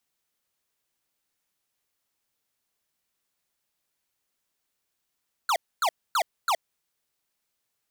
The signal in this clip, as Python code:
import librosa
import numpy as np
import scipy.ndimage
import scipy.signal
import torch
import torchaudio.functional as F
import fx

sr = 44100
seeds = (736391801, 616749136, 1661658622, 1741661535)

y = fx.laser_zaps(sr, level_db=-23, start_hz=1500.0, end_hz=610.0, length_s=0.07, wave='square', shots=4, gap_s=0.26)